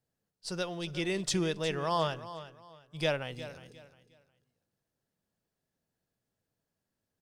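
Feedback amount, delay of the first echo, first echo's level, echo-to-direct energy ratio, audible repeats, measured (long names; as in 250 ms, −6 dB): 28%, 358 ms, −14.0 dB, −13.5 dB, 2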